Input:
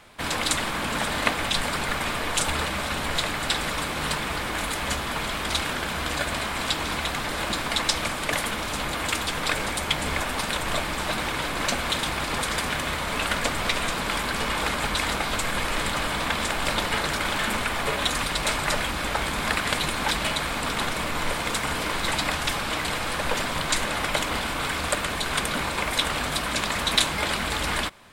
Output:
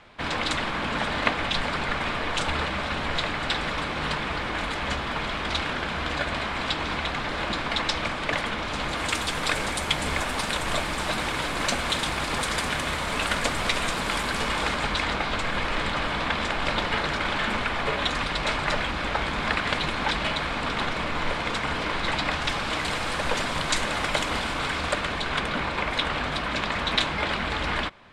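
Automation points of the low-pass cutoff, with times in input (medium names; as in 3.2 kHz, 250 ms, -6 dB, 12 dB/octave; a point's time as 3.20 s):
8.65 s 4.1 kHz
9.22 s 10 kHz
14.34 s 10 kHz
15.11 s 4.2 kHz
22.25 s 4.2 kHz
22.92 s 7.7 kHz
24.34 s 7.7 kHz
25.44 s 3.6 kHz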